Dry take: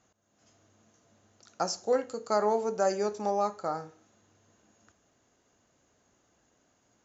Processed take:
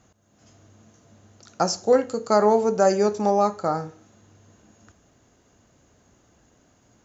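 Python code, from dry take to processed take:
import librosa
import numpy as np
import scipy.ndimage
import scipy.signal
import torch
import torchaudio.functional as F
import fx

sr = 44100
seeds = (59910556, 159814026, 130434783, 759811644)

y = fx.low_shelf(x, sr, hz=230.0, db=9.5)
y = F.gain(torch.from_numpy(y), 7.0).numpy()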